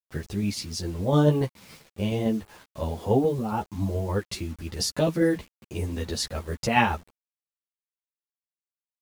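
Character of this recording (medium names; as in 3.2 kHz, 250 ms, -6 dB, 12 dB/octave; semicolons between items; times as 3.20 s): tremolo saw down 7.1 Hz, depth 40%; a quantiser's noise floor 8-bit, dither none; a shimmering, thickened sound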